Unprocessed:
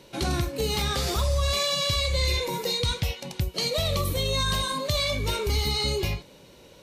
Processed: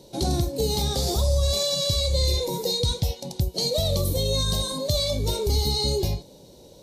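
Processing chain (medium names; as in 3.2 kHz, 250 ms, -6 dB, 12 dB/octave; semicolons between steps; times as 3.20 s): high-order bell 1.8 kHz -15.5 dB; trim +3 dB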